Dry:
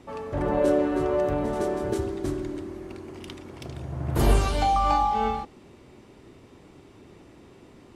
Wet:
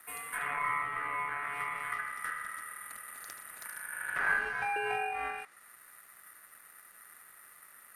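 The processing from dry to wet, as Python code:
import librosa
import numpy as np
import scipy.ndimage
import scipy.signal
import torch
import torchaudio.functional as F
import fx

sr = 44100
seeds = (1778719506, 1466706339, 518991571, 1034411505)

y = (np.kron(scipy.signal.resample_poly(x, 1, 4), np.eye(4)[0]) * 4)[:len(x)]
y = y * np.sin(2.0 * np.pi * 1600.0 * np.arange(len(y)) / sr)
y = fx.env_lowpass_down(y, sr, base_hz=1900.0, full_db=-16.5)
y = y * 10.0 ** (-6.5 / 20.0)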